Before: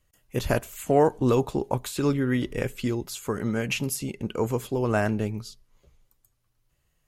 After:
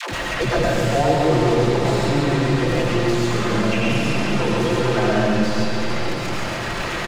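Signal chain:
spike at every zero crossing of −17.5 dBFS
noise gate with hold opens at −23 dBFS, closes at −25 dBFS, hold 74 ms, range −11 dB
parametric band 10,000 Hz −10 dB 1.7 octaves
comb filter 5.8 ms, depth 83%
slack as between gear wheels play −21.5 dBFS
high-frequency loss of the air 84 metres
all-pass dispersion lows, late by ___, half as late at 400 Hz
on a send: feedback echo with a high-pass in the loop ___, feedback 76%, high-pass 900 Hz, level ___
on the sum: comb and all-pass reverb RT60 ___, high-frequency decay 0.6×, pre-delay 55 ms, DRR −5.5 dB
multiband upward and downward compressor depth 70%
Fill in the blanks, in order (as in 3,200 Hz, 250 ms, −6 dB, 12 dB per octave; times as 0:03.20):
114 ms, 139 ms, −6.5 dB, 2.2 s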